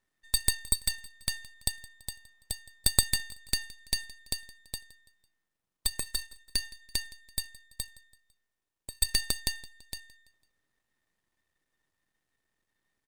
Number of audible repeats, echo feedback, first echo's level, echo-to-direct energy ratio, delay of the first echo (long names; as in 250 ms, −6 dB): 3, 46%, −21.0 dB, −20.0 dB, 167 ms